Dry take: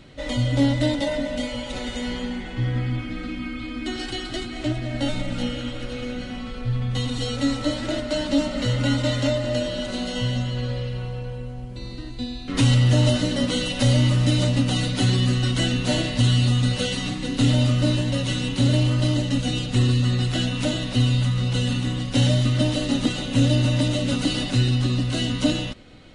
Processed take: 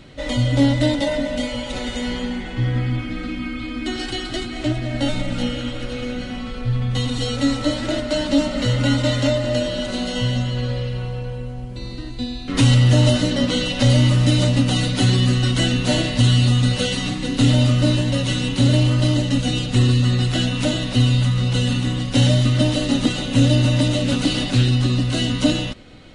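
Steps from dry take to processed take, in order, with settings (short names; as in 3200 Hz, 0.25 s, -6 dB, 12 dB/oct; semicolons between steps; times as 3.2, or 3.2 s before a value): 13.3–13.9 LPF 7200 Hz 12 dB/oct; 23.96–24.66 Doppler distortion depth 0.15 ms; gain +3.5 dB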